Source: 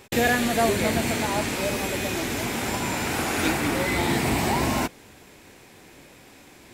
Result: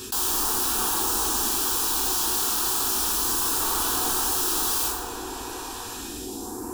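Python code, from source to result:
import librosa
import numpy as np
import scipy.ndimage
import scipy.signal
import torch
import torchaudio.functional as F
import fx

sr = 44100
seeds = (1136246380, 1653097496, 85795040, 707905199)

p1 = fx.phaser_stages(x, sr, stages=2, low_hz=140.0, high_hz=3500.0, hz=0.33, feedback_pct=20)
p2 = fx.rider(p1, sr, range_db=10, speed_s=2.0)
p3 = p1 + F.gain(torch.from_numpy(p2), 0.5).numpy()
p4 = fx.dmg_crackle(p3, sr, seeds[0], per_s=22.0, level_db=-45.0)
p5 = fx.highpass(p4, sr, hz=94.0, slope=6)
p6 = (np.mod(10.0 ** (21.0 / 20.0) * p5 + 1.0, 2.0) - 1.0) / 10.0 ** (21.0 / 20.0)
p7 = fx.fixed_phaser(p6, sr, hz=570.0, stages=6)
p8 = p7 + fx.echo_bbd(p7, sr, ms=368, stages=2048, feedback_pct=73, wet_db=-15.5, dry=0)
p9 = fx.rev_plate(p8, sr, seeds[1], rt60_s=0.83, hf_ratio=0.6, predelay_ms=0, drr_db=-3.0)
p10 = fx.env_flatten(p9, sr, amount_pct=50)
y = F.gain(torch.from_numpy(p10), -1.5).numpy()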